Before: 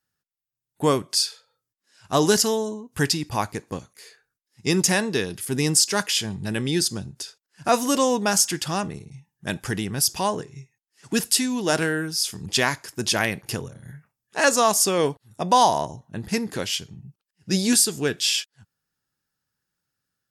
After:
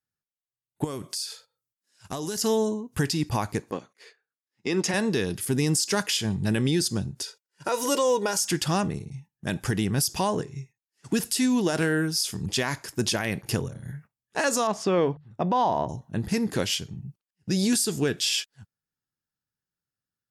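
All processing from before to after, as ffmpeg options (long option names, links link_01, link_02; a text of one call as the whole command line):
ffmpeg -i in.wav -filter_complex "[0:a]asettb=1/sr,asplit=3[link_01][link_02][link_03];[link_01]atrim=end=0.844[link_04];[link_02]atrim=start=0.84:end=2.41,asetpts=PTS-STARTPTS,afade=type=in:duration=0.004:curve=qsin,afade=type=out:start_time=1.566:duration=0.004:curve=qsin,acompressor=threshold=-31dB:ratio=12:attack=3.2:release=140:knee=1:detection=peak,highshelf=frequency=5400:gain=9.5[link_05];[link_03]atrim=start=2.406[link_06];[link_04][link_05]acrossfade=duration=0.004:curve1=hsin:curve2=qsin[link_07];[link_07][link_06]acrossfade=duration=0.004:curve1=qsin:curve2=hsin,asettb=1/sr,asplit=3[link_08][link_09][link_10];[link_08]atrim=end=3.714[link_11];[link_09]atrim=start=3.71:end=4.94,asetpts=PTS-STARTPTS,afade=type=in:duration=0.004:curve=qsin,afade=type=out:start_time=1.226:duration=0.004:curve=qsin,highpass=270,lowpass=2400,aemphasis=mode=production:type=75fm[link_12];[link_10]atrim=start=4.936[link_13];[link_11][link_12]acrossfade=duration=0.004:curve1=hsin:curve2=qsin[link_14];[link_14][link_13]acrossfade=duration=0.004:curve1=qsin:curve2=hsin,asettb=1/sr,asplit=3[link_15][link_16][link_17];[link_15]atrim=end=7.224[link_18];[link_16]atrim=start=7.22:end=8.41,asetpts=PTS-STARTPTS,afade=type=in:duration=0.004:curve=qsin,afade=type=out:start_time=1.186:duration=0.004:curve=qsin,highpass=220,aecho=1:1:2.1:0.61,atrim=end_sample=52479[link_19];[link_17]atrim=start=8.406[link_20];[link_18][link_19]acrossfade=duration=0.004:curve1=hsin:curve2=qsin[link_21];[link_21][link_20]acrossfade=duration=0.004:curve1=qsin:curve2=hsin,asettb=1/sr,asplit=3[link_22][link_23][link_24];[link_22]atrim=end=14.674[link_25];[link_23]atrim=start=14.67:end=15.89,asetpts=PTS-STARTPTS,afade=type=in:duration=0.004:curve=qsin,afade=type=out:start_time=1.216:duration=0.004:curve=qsin,lowpass=2500,bandreject=frequency=50:width_type=h:width=6,bandreject=frequency=100:width_type=h:width=6,bandreject=frequency=150:width_type=h:width=6[link_26];[link_24]atrim=start=15.886[link_27];[link_25][link_26]acrossfade=duration=0.004:curve1=hsin:curve2=qsin[link_28];[link_28][link_27]acrossfade=duration=0.004:curve1=qsin:curve2=hsin,agate=range=-12dB:threshold=-50dB:ratio=16:detection=peak,lowshelf=frequency=450:gain=4.5,alimiter=limit=-15dB:level=0:latency=1:release=95" out.wav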